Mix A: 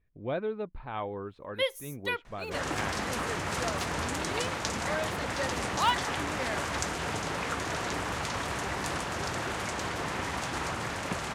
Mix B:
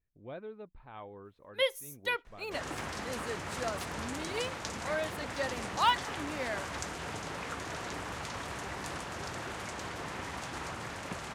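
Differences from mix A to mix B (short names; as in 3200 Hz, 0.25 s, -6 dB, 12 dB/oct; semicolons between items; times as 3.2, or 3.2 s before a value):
speech -11.5 dB; second sound -6.5 dB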